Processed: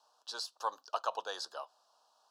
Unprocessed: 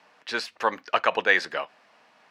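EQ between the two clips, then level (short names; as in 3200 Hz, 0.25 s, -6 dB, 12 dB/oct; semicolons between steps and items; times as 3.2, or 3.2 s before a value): HPF 1100 Hz 12 dB/oct; Butterworth band-stop 2100 Hz, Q 0.61; -2.0 dB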